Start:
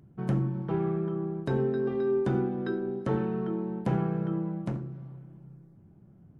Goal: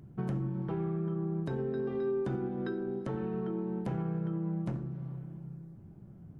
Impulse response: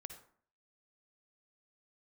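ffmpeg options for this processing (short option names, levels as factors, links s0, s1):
-filter_complex "[0:a]asplit=2[s0][s1];[s1]lowshelf=f=170:g=8[s2];[1:a]atrim=start_sample=2205[s3];[s2][s3]afir=irnorm=-1:irlink=0,volume=0.708[s4];[s0][s4]amix=inputs=2:normalize=0,alimiter=level_in=1.26:limit=0.0631:level=0:latency=1:release=431,volume=0.794"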